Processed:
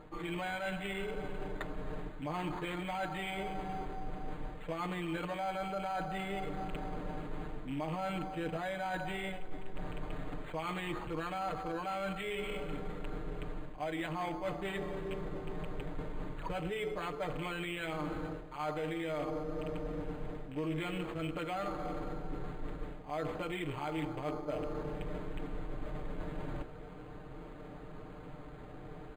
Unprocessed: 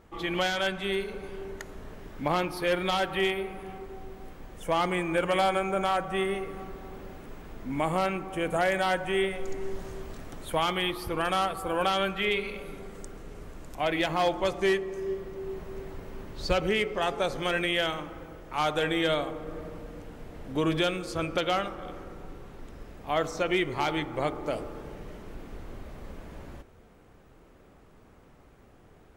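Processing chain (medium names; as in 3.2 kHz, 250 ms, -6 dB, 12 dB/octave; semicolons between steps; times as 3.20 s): rattle on loud lows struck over -36 dBFS, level -30 dBFS; peak limiter -21 dBFS, peak gain reduction 7 dB; comb 6.6 ms, depth 86%; reverse; compression 6:1, threshold -41 dBFS, peak gain reduction 18.5 dB; reverse; decimation joined by straight lines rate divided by 8×; trim +6 dB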